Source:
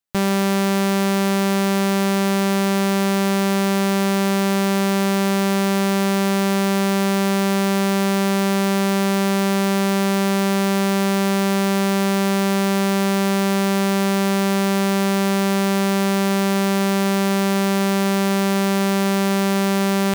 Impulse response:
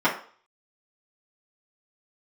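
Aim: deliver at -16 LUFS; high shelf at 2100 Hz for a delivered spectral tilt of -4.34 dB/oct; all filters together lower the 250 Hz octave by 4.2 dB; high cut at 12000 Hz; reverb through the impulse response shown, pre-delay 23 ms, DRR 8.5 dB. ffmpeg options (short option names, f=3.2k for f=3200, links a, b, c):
-filter_complex "[0:a]lowpass=12k,equalizer=f=250:t=o:g=-6.5,highshelf=f=2.1k:g=5,asplit=2[a][b];[1:a]atrim=start_sample=2205,adelay=23[c];[b][c]afir=irnorm=-1:irlink=0,volume=-26dB[d];[a][d]amix=inputs=2:normalize=0,volume=4dB"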